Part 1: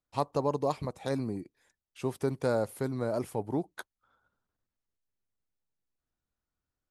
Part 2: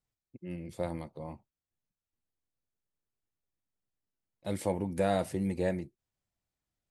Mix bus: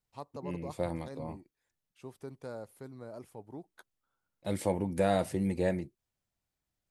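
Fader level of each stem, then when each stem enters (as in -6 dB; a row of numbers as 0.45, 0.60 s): -14.0, +1.0 dB; 0.00, 0.00 s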